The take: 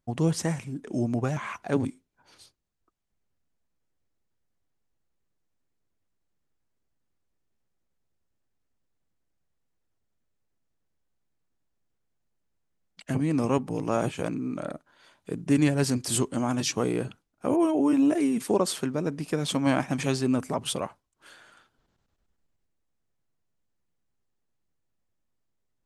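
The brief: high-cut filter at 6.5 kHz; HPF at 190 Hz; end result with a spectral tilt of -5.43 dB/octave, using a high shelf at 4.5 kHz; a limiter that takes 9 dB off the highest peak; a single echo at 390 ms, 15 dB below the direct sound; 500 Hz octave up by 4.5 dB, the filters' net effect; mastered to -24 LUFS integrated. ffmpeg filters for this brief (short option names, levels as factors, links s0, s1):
-af "highpass=190,lowpass=6500,equalizer=f=500:t=o:g=6,highshelf=f=4500:g=-5,alimiter=limit=0.133:level=0:latency=1,aecho=1:1:390:0.178,volume=1.78"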